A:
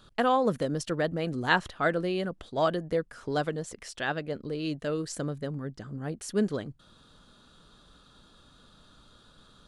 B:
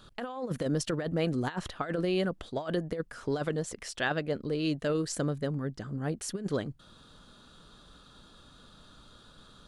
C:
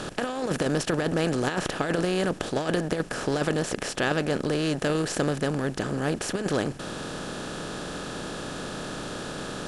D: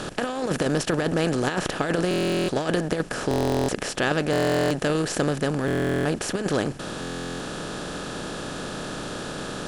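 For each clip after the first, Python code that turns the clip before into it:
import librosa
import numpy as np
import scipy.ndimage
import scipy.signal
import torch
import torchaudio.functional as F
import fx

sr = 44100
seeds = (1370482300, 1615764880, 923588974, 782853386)

y1 = fx.over_compress(x, sr, threshold_db=-29.0, ratio=-0.5)
y2 = fx.bin_compress(y1, sr, power=0.4)
y3 = fx.buffer_glitch(y2, sr, at_s=(2.09, 3.29, 4.31, 5.66, 7.0), block=1024, repeats=16)
y3 = F.gain(torch.from_numpy(y3), 2.0).numpy()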